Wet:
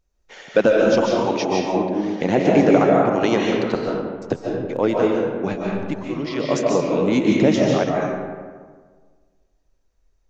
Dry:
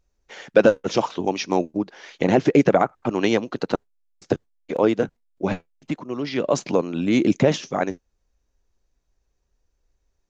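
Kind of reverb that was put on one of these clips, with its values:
comb and all-pass reverb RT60 1.6 s, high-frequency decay 0.5×, pre-delay 105 ms, DRR −2.5 dB
level −1.5 dB

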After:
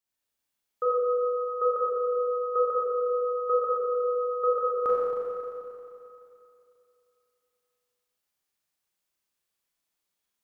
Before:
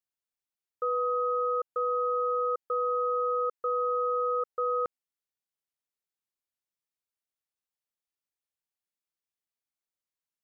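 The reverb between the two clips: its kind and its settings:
four-comb reverb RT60 2.8 s, combs from 30 ms, DRR −7.5 dB
level +2 dB

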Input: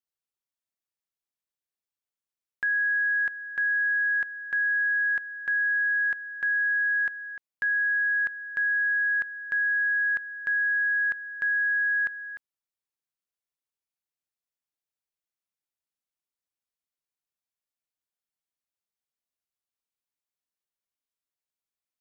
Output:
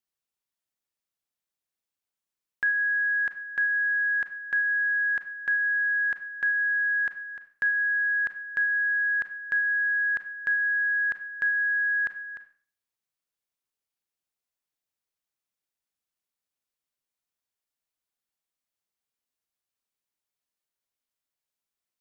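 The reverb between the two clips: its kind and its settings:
four-comb reverb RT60 0.46 s, combs from 30 ms, DRR 9.5 dB
level +2 dB

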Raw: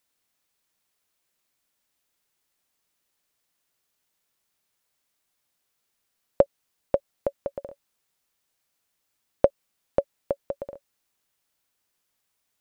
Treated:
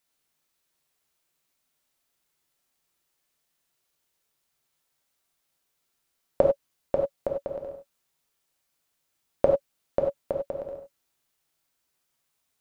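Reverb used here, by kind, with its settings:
reverb whose tail is shaped and stops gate 120 ms flat, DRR 1 dB
level −2.5 dB

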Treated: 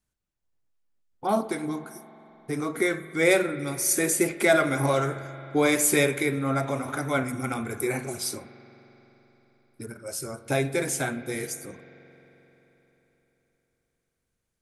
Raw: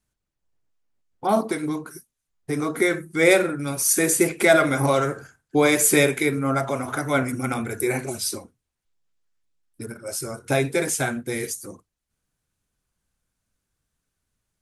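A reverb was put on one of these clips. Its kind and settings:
spring reverb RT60 3.9 s, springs 44 ms, chirp 20 ms, DRR 13.5 dB
level −4 dB

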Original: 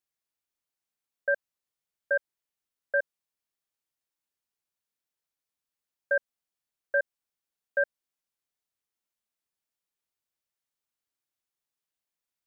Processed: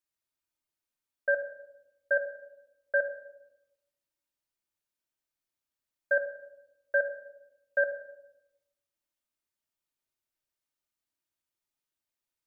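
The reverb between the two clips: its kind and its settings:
rectangular room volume 2,900 cubic metres, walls furnished, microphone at 2.7 metres
level −3 dB

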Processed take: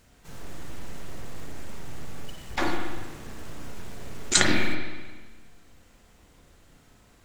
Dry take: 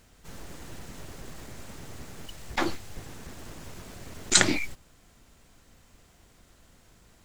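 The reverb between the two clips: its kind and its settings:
spring reverb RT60 1.4 s, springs 32/39/46 ms, chirp 30 ms, DRR 0 dB
level −1 dB

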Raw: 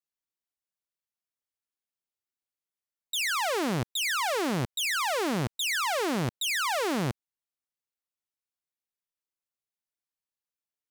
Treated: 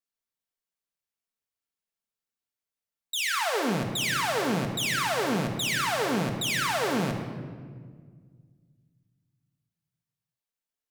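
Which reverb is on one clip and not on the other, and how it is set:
rectangular room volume 2,300 cubic metres, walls mixed, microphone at 1.6 metres
level −1 dB

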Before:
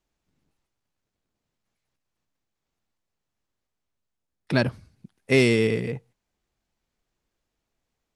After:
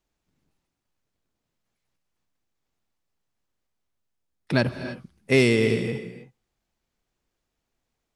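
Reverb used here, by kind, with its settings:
reverb whose tail is shaped and stops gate 340 ms rising, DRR 10.5 dB

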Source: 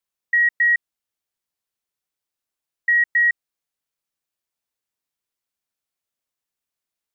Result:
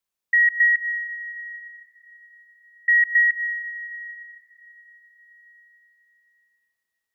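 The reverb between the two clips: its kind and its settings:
comb and all-pass reverb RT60 5 s, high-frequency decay 0.7×, pre-delay 100 ms, DRR 13.5 dB

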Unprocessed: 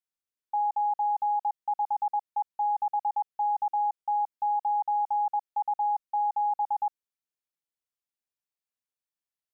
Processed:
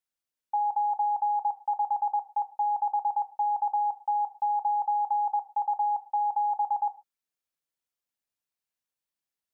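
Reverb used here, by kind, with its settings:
reverb whose tail is shaped and stops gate 160 ms falling, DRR 9 dB
level +1.5 dB

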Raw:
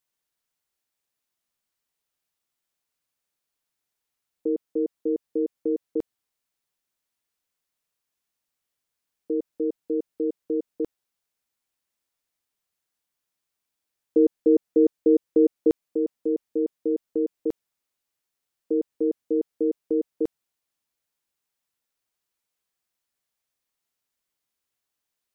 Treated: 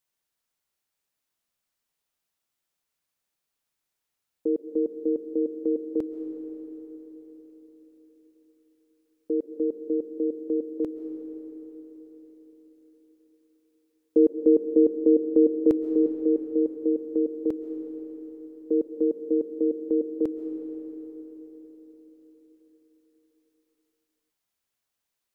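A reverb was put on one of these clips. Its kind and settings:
comb and all-pass reverb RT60 4.8 s, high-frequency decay 0.55×, pre-delay 95 ms, DRR 8 dB

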